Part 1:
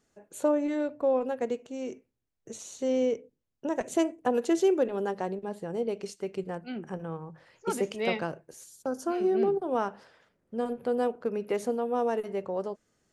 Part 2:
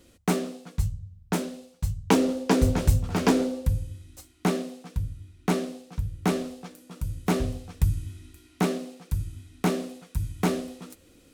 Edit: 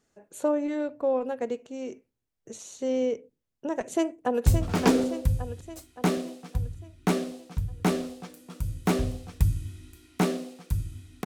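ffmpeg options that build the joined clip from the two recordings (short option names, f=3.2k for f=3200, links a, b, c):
-filter_complex "[0:a]apad=whole_dur=11.25,atrim=end=11.25,atrim=end=4.462[a];[1:a]atrim=start=2.868:end=9.66[b];[a][b]acrossfade=d=0.004:c1=hsin:c2=hsin,asplit=2[c][d];[d]afade=t=in:st=3.9:d=0.01,afade=t=out:st=4.46:d=0.01,aecho=0:1:570|1140|1710|2280|2850|3420|3990:0.446684|0.245676|0.135122|0.074317|0.0408743|0.0224809|0.0123645[e];[c][e]amix=inputs=2:normalize=0"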